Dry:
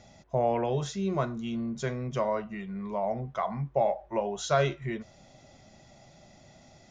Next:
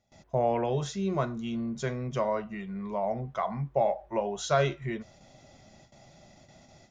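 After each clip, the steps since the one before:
noise gate with hold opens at −45 dBFS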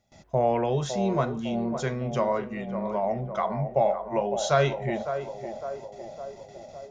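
feedback echo with a band-pass in the loop 557 ms, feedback 65%, band-pass 570 Hz, level −7.5 dB
level +3 dB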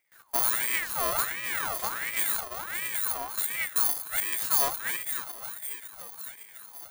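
samples in bit-reversed order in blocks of 64 samples
ring modulator whose carrier an LFO sweeps 1,500 Hz, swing 45%, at 1.4 Hz

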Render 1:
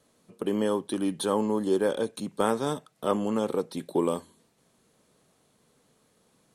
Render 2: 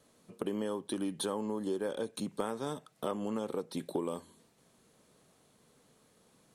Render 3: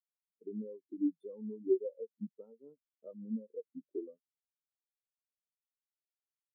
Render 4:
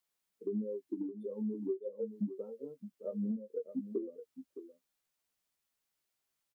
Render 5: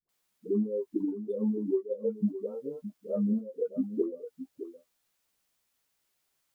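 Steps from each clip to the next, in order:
downward compressor 5 to 1, threshold −32 dBFS, peak gain reduction 12 dB
every bin expanded away from the loudest bin 4 to 1; level −1.5 dB
downward compressor 12 to 1, threshold −44 dBFS, peak gain reduction 20.5 dB; double-tracking delay 15 ms −7 dB; single-tap delay 616 ms −11.5 dB; level +10 dB
all-pass dispersion highs, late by 91 ms, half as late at 450 Hz; level +7.5 dB

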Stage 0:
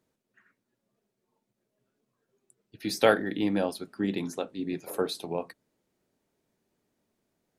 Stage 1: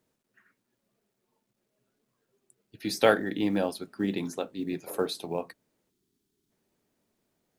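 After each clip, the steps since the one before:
time-frequency box erased 0:05.90–0:06.51, 440–3,000 Hz
log-companded quantiser 8 bits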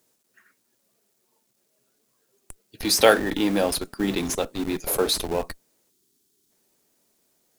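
bass and treble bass −7 dB, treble +10 dB
in parallel at −5 dB: comparator with hysteresis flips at −36 dBFS
on the sum: level +5 dB

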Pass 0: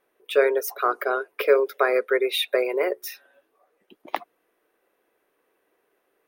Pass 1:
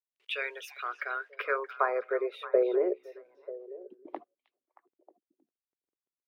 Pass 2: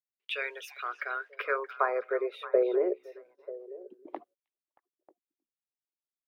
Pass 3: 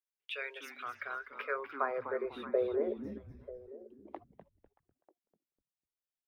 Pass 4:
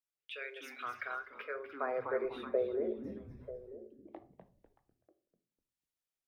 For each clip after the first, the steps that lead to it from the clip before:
bit reduction 10 bits; band-pass filter sweep 2,700 Hz → 350 Hz, 0:00.85–0:02.85; echo through a band-pass that steps 313 ms, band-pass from 3,600 Hz, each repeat −1.4 octaves, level −10 dB
noise gate −59 dBFS, range −18 dB
echo with shifted repeats 249 ms, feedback 32%, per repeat −150 Hz, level −10.5 dB; level −6 dB
rotating-speaker cabinet horn 0.8 Hz; rectangular room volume 330 cubic metres, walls furnished, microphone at 0.63 metres; level +1 dB

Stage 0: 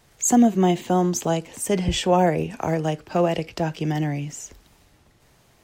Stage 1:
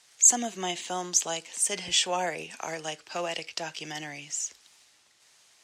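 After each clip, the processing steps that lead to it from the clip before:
meter weighting curve ITU-R 468
level −7 dB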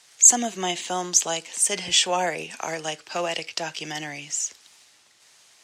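high-pass filter 72 Hz
level +5 dB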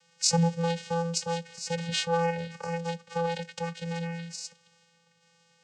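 channel vocoder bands 8, square 168 Hz
level −4.5 dB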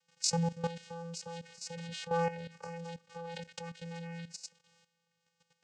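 output level in coarse steps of 13 dB
level −3.5 dB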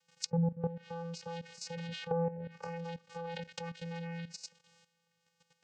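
treble cut that deepens with the level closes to 520 Hz, closed at −31.5 dBFS
level +2 dB

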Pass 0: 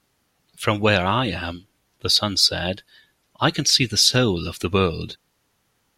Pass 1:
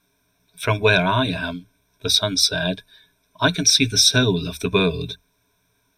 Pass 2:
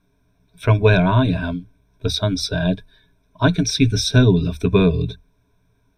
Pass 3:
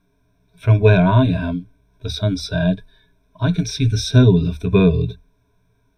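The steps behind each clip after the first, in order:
EQ curve with evenly spaced ripples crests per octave 1.6, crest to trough 17 dB; level −2 dB
spectral tilt −3 dB per octave; level −1 dB
harmonic and percussive parts rebalanced percussive −11 dB; level +3 dB

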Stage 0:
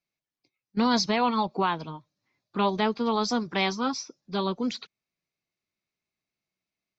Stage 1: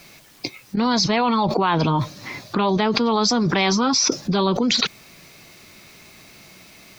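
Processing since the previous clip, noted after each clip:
envelope flattener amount 100%
level +2.5 dB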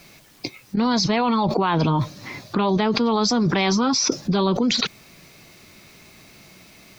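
low-shelf EQ 460 Hz +3.5 dB
level −2.5 dB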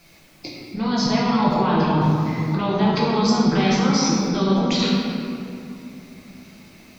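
convolution reverb RT60 2.8 s, pre-delay 6 ms, DRR −6 dB
level −7 dB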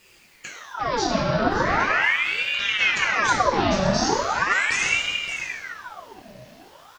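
single-tap delay 571 ms −11.5 dB
ring modulator whose carrier an LFO sweeps 1,500 Hz, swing 75%, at 0.39 Hz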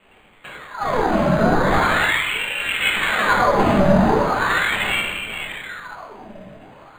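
rectangular room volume 160 cubic metres, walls mixed, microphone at 1.4 metres
linearly interpolated sample-rate reduction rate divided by 8×

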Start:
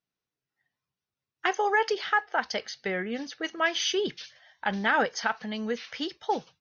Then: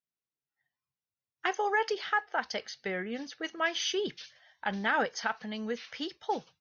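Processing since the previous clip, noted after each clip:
noise reduction from a noise print of the clip's start 7 dB
level −4 dB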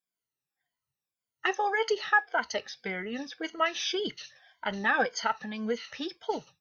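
rippled gain that drifts along the octave scale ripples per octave 1.8, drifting −1.8 Hz, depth 15 dB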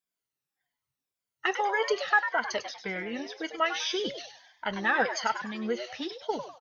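echo with shifted repeats 99 ms, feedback 35%, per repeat +140 Hz, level −9.5 dB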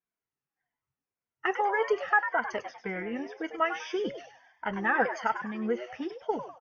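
moving average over 11 samples
notch filter 590 Hz, Q 12
level +1.5 dB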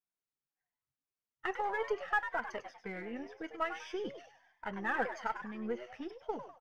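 gain on one half-wave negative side −3 dB
level −6.5 dB

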